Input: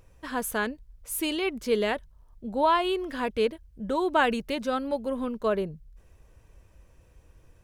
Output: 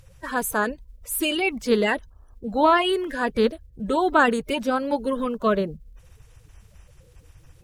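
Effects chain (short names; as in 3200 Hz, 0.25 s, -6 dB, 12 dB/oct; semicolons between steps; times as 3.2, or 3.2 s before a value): bin magnitudes rounded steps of 30 dB; gain +5.5 dB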